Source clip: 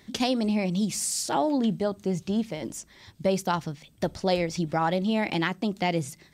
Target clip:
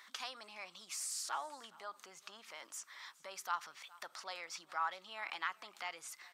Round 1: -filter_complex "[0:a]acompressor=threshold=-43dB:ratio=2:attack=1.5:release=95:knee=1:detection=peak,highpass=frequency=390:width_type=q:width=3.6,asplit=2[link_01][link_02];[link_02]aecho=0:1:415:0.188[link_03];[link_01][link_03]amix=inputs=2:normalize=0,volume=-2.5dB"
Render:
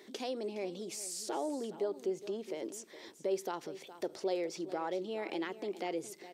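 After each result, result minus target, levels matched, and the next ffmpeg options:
500 Hz band +14.0 dB; echo-to-direct +7.5 dB
-filter_complex "[0:a]acompressor=threshold=-43dB:ratio=2:attack=1.5:release=95:knee=1:detection=peak,highpass=frequency=1200:width_type=q:width=3.6,asplit=2[link_01][link_02];[link_02]aecho=0:1:415:0.188[link_03];[link_01][link_03]amix=inputs=2:normalize=0,volume=-2.5dB"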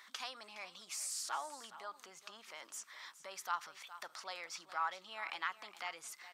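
echo-to-direct +7.5 dB
-filter_complex "[0:a]acompressor=threshold=-43dB:ratio=2:attack=1.5:release=95:knee=1:detection=peak,highpass=frequency=1200:width_type=q:width=3.6,asplit=2[link_01][link_02];[link_02]aecho=0:1:415:0.0794[link_03];[link_01][link_03]amix=inputs=2:normalize=0,volume=-2.5dB"

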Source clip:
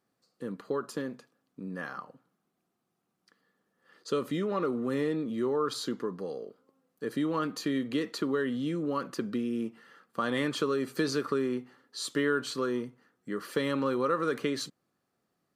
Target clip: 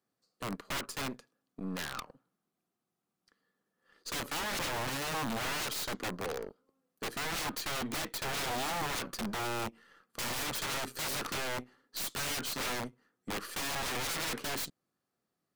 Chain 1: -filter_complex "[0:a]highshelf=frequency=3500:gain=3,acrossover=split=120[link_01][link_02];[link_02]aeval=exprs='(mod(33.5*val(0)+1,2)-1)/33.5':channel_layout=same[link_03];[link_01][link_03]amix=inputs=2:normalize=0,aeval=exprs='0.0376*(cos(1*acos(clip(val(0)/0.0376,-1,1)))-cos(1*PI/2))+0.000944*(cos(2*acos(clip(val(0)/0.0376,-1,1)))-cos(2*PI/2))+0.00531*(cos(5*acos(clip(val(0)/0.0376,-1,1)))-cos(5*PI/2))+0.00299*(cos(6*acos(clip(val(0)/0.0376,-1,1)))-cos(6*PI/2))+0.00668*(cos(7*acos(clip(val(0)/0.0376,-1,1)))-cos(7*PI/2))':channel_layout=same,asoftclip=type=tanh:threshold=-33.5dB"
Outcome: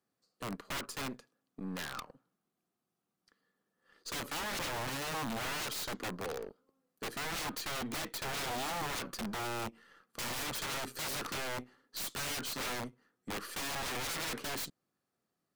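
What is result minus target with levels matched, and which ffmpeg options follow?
soft clipping: distortion +10 dB
-filter_complex "[0:a]highshelf=frequency=3500:gain=3,acrossover=split=120[link_01][link_02];[link_02]aeval=exprs='(mod(33.5*val(0)+1,2)-1)/33.5':channel_layout=same[link_03];[link_01][link_03]amix=inputs=2:normalize=0,aeval=exprs='0.0376*(cos(1*acos(clip(val(0)/0.0376,-1,1)))-cos(1*PI/2))+0.000944*(cos(2*acos(clip(val(0)/0.0376,-1,1)))-cos(2*PI/2))+0.00531*(cos(5*acos(clip(val(0)/0.0376,-1,1)))-cos(5*PI/2))+0.00299*(cos(6*acos(clip(val(0)/0.0376,-1,1)))-cos(6*PI/2))+0.00668*(cos(7*acos(clip(val(0)/0.0376,-1,1)))-cos(7*PI/2))':channel_layout=same,asoftclip=type=tanh:threshold=-27dB"

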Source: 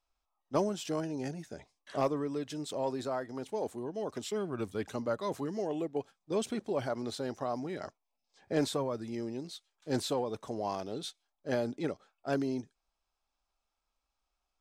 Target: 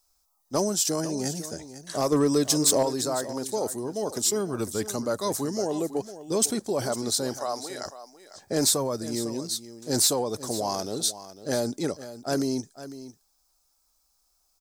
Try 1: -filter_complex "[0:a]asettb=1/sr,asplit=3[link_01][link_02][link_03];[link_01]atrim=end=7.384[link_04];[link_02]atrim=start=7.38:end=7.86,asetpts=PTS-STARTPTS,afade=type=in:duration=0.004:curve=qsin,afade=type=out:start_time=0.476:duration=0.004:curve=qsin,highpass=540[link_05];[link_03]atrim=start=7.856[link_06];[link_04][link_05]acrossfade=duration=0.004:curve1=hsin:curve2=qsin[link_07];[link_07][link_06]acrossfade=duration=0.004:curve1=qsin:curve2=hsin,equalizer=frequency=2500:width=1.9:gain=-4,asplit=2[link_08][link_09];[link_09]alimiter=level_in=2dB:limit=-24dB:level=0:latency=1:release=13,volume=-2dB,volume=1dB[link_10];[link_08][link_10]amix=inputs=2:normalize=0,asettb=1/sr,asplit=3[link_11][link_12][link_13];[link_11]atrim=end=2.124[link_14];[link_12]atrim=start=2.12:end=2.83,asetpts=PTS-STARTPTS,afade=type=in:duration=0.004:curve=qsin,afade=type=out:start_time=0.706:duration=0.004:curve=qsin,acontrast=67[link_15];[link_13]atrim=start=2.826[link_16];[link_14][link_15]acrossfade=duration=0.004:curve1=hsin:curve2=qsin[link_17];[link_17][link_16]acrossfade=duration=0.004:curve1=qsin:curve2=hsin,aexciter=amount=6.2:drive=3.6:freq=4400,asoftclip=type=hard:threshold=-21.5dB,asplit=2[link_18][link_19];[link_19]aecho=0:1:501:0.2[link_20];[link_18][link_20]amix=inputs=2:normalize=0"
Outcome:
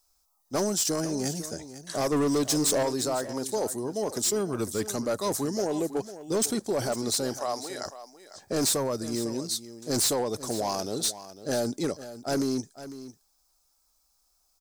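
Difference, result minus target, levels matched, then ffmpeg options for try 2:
hard clipping: distortion +10 dB
-filter_complex "[0:a]asettb=1/sr,asplit=3[link_01][link_02][link_03];[link_01]atrim=end=7.384[link_04];[link_02]atrim=start=7.38:end=7.86,asetpts=PTS-STARTPTS,afade=type=in:duration=0.004:curve=qsin,afade=type=out:start_time=0.476:duration=0.004:curve=qsin,highpass=540[link_05];[link_03]atrim=start=7.856[link_06];[link_04][link_05]acrossfade=duration=0.004:curve1=hsin:curve2=qsin[link_07];[link_07][link_06]acrossfade=duration=0.004:curve1=qsin:curve2=hsin,equalizer=frequency=2500:width=1.9:gain=-4,asplit=2[link_08][link_09];[link_09]alimiter=level_in=2dB:limit=-24dB:level=0:latency=1:release=13,volume=-2dB,volume=1dB[link_10];[link_08][link_10]amix=inputs=2:normalize=0,asettb=1/sr,asplit=3[link_11][link_12][link_13];[link_11]atrim=end=2.124[link_14];[link_12]atrim=start=2.12:end=2.83,asetpts=PTS-STARTPTS,afade=type=in:duration=0.004:curve=qsin,afade=type=out:start_time=0.706:duration=0.004:curve=qsin,acontrast=67[link_15];[link_13]atrim=start=2.826[link_16];[link_14][link_15]acrossfade=duration=0.004:curve1=hsin:curve2=qsin[link_17];[link_17][link_16]acrossfade=duration=0.004:curve1=qsin:curve2=hsin,aexciter=amount=6.2:drive=3.6:freq=4400,asoftclip=type=hard:threshold=-14.5dB,asplit=2[link_18][link_19];[link_19]aecho=0:1:501:0.2[link_20];[link_18][link_20]amix=inputs=2:normalize=0"

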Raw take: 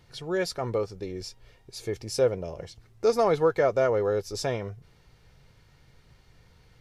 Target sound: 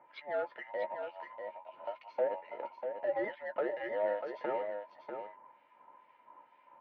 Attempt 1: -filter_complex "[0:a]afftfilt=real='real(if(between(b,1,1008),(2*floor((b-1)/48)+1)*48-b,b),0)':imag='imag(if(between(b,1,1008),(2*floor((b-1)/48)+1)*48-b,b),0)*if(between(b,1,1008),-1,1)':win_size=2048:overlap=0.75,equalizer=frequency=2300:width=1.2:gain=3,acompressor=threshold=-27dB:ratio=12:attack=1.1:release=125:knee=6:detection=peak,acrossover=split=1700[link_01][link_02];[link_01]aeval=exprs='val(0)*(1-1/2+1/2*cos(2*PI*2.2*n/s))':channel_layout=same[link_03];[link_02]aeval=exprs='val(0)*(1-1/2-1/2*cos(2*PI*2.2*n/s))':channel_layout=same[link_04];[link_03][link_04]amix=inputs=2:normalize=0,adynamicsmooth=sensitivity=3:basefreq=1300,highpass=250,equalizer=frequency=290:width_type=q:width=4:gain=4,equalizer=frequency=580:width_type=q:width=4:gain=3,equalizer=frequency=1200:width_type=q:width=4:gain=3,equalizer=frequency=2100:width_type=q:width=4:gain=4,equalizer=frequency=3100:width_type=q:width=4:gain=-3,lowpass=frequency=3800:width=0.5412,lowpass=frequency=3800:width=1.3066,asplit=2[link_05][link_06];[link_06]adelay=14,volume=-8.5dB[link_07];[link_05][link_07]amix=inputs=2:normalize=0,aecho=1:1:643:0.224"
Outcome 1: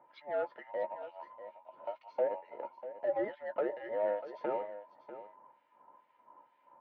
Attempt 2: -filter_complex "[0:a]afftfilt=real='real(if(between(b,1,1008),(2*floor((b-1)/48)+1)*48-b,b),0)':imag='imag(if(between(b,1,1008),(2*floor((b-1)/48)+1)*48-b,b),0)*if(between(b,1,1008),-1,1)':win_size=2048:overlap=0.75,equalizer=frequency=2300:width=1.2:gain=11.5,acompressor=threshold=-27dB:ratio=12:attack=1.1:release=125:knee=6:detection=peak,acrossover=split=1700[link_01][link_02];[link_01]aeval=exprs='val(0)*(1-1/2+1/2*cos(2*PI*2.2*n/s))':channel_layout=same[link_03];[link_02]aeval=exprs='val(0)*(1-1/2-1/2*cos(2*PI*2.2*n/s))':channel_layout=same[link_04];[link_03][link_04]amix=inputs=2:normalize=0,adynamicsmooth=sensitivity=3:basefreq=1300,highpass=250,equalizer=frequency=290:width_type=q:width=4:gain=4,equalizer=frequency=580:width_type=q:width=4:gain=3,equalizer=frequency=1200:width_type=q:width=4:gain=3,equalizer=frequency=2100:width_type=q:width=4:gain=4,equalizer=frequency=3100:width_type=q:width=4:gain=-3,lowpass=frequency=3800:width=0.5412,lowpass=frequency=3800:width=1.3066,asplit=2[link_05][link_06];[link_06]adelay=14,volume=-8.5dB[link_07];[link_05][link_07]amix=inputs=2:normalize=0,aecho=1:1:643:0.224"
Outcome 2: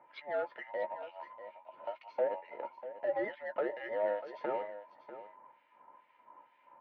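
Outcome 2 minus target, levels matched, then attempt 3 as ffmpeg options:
echo-to-direct −6 dB
-filter_complex "[0:a]afftfilt=real='real(if(between(b,1,1008),(2*floor((b-1)/48)+1)*48-b,b),0)':imag='imag(if(between(b,1,1008),(2*floor((b-1)/48)+1)*48-b,b),0)*if(between(b,1,1008),-1,1)':win_size=2048:overlap=0.75,equalizer=frequency=2300:width=1.2:gain=11.5,acompressor=threshold=-27dB:ratio=12:attack=1.1:release=125:knee=6:detection=peak,acrossover=split=1700[link_01][link_02];[link_01]aeval=exprs='val(0)*(1-1/2+1/2*cos(2*PI*2.2*n/s))':channel_layout=same[link_03];[link_02]aeval=exprs='val(0)*(1-1/2-1/2*cos(2*PI*2.2*n/s))':channel_layout=same[link_04];[link_03][link_04]amix=inputs=2:normalize=0,adynamicsmooth=sensitivity=3:basefreq=1300,highpass=250,equalizer=frequency=290:width_type=q:width=4:gain=4,equalizer=frequency=580:width_type=q:width=4:gain=3,equalizer=frequency=1200:width_type=q:width=4:gain=3,equalizer=frequency=2100:width_type=q:width=4:gain=4,equalizer=frequency=3100:width_type=q:width=4:gain=-3,lowpass=frequency=3800:width=0.5412,lowpass=frequency=3800:width=1.3066,asplit=2[link_05][link_06];[link_06]adelay=14,volume=-8.5dB[link_07];[link_05][link_07]amix=inputs=2:normalize=0,aecho=1:1:643:0.447"

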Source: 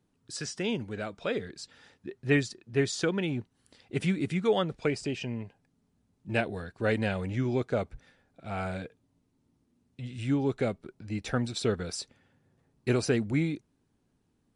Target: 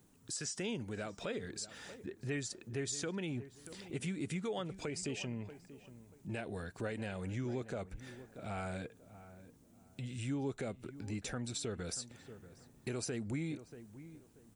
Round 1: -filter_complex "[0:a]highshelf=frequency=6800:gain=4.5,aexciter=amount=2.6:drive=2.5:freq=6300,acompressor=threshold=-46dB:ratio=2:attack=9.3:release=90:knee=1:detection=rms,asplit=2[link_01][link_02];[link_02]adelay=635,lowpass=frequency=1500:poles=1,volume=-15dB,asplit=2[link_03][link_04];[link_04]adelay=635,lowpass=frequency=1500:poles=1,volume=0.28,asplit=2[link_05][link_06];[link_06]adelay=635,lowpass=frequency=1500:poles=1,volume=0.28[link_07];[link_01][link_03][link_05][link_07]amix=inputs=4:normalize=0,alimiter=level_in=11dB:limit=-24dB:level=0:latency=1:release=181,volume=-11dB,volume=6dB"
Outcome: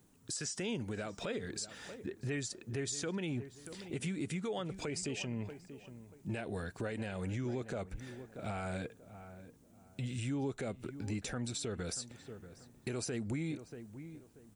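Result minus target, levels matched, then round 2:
downward compressor: peak gain reduction −4 dB
-filter_complex "[0:a]highshelf=frequency=6800:gain=4.5,aexciter=amount=2.6:drive=2.5:freq=6300,acompressor=threshold=-54dB:ratio=2:attack=9.3:release=90:knee=1:detection=rms,asplit=2[link_01][link_02];[link_02]adelay=635,lowpass=frequency=1500:poles=1,volume=-15dB,asplit=2[link_03][link_04];[link_04]adelay=635,lowpass=frequency=1500:poles=1,volume=0.28,asplit=2[link_05][link_06];[link_06]adelay=635,lowpass=frequency=1500:poles=1,volume=0.28[link_07];[link_01][link_03][link_05][link_07]amix=inputs=4:normalize=0,alimiter=level_in=11dB:limit=-24dB:level=0:latency=1:release=181,volume=-11dB,volume=6dB"

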